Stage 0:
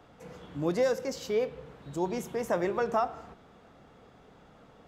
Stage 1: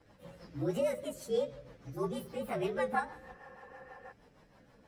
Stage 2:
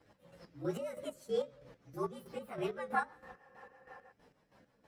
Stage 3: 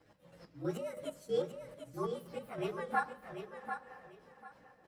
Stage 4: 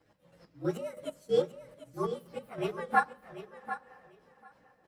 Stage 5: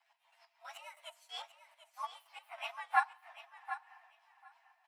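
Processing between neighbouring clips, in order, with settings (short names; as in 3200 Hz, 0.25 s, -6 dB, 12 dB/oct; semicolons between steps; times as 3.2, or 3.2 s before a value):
inharmonic rescaling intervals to 116%; spectral repair 3.23–4.09, 360–3100 Hz before; rotary speaker horn 6.3 Hz
low shelf 67 Hz -10 dB; chopper 3.1 Hz, depth 60%, duty 40%; dynamic EQ 1300 Hz, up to +6 dB, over -59 dBFS, Q 2.7; gain -2 dB
feedback echo 0.743 s, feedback 22%, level -8 dB; on a send at -15 dB: reverb RT60 0.85 s, pre-delay 6 ms
upward expander 1.5:1, over -48 dBFS; gain +8 dB
rippled Chebyshev high-pass 660 Hz, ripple 9 dB; gain +4 dB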